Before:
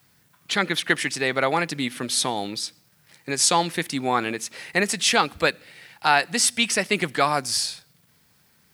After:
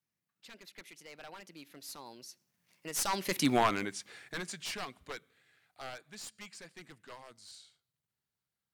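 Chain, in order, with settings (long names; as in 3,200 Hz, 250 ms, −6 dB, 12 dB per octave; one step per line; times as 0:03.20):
wavefolder on the positive side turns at −16 dBFS
source passing by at 0:03.49, 45 m/s, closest 6.1 metres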